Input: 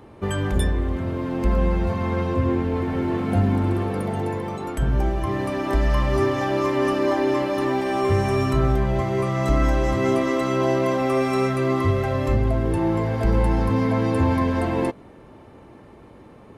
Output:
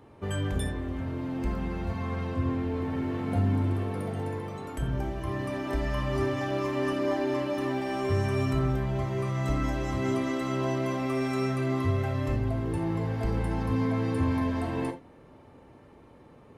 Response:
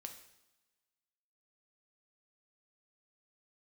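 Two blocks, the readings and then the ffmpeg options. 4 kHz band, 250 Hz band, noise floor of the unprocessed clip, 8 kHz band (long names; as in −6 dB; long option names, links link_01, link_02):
−6.0 dB, −6.5 dB, −46 dBFS, −6.5 dB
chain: -filter_complex "[1:a]atrim=start_sample=2205,atrim=end_sample=3969[link_01];[0:a][link_01]afir=irnorm=-1:irlink=0,volume=-2dB"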